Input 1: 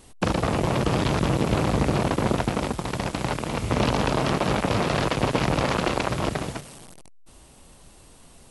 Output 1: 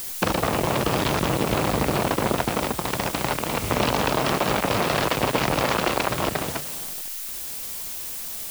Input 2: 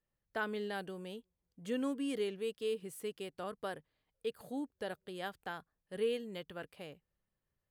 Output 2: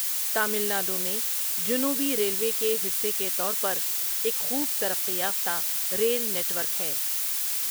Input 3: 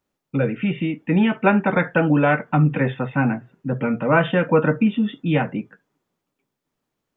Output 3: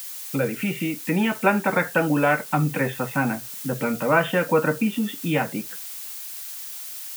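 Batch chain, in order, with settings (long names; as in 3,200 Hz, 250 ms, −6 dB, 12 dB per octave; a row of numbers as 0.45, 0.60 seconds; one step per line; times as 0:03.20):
background noise blue −40 dBFS
low-shelf EQ 290 Hz −8 dB
in parallel at +1 dB: downward compressor, threshold −32 dBFS
on the sum: loudness normalisation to −24 LKFS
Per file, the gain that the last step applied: +0.5, +5.5, −2.0 decibels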